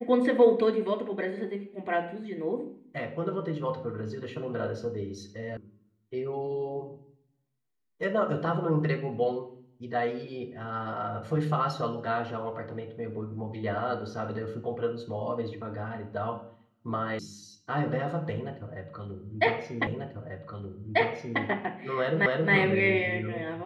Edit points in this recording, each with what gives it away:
5.57 s: sound stops dead
17.19 s: sound stops dead
19.87 s: repeat of the last 1.54 s
22.26 s: repeat of the last 0.27 s

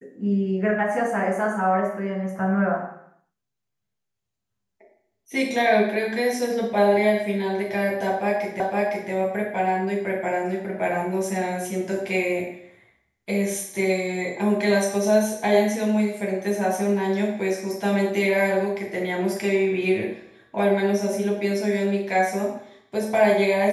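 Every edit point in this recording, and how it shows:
8.60 s: repeat of the last 0.51 s

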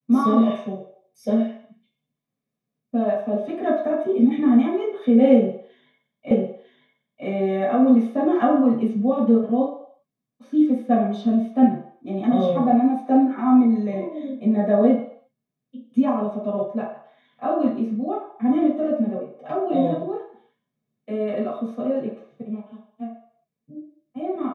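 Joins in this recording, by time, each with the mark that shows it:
6.31 s: repeat of the last 0.95 s

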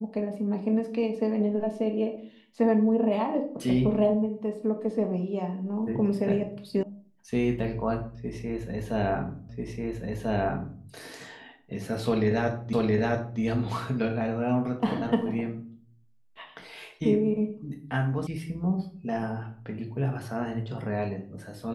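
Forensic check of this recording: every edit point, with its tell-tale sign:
6.83 s: sound stops dead
9.49 s: repeat of the last 1.34 s
12.73 s: repeat of the last 0.67 s
18.27 s: sound stops dead

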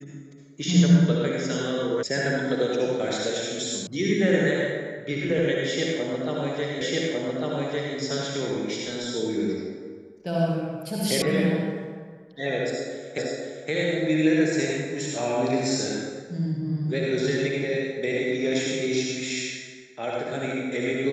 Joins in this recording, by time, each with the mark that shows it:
2.03 s: sound stops dead
3.87 s: sound stops dead
6.81 s: repeat of the last 1.15 s
11.22 s: sound stops dead
13.18 s: repeat of the last 0.52 s

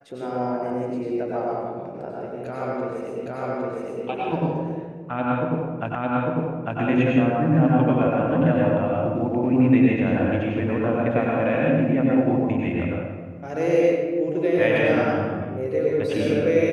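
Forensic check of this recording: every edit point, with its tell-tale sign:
3.26 s: repeat of the last 0.81 s
5.95 s: repeat of the last 0.85 s

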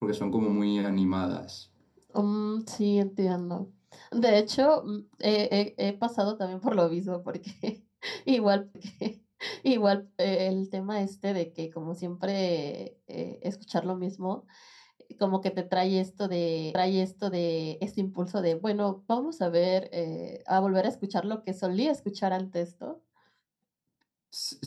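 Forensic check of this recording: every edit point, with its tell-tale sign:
8.75 s: repeat of the last 1.38 s
16.75 s: repeat of the last 1.02 s

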